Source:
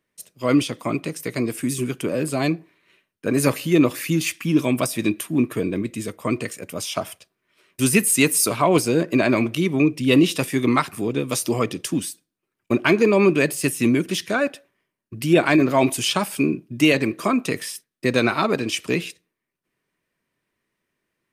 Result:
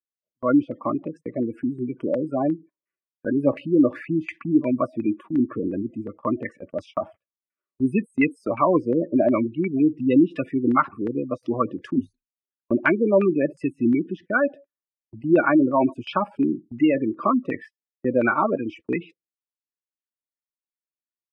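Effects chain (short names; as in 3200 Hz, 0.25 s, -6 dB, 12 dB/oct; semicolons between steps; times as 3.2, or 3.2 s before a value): spectral gate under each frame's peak -15 dB strong; LFO low-pass saw down 2.8 Hz 690–1800 Hz; comb 3.5 ms, depth 40%; gate -36 dBFS, range -31 dB; 11.95–12.72 ripple EQ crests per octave 1.5, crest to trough 17 dB; gain -3.5 dB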